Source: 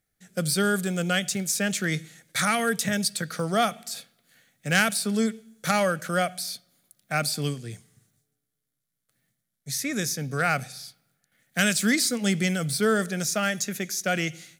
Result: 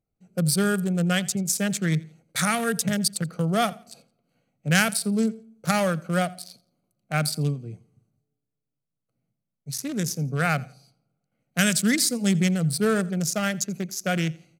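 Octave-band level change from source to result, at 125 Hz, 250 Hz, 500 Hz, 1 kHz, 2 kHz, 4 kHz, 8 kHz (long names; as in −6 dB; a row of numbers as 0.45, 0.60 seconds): +5.0, +3.0, −0.5, −1.0, −1.5, −0.5, +0.5 decibels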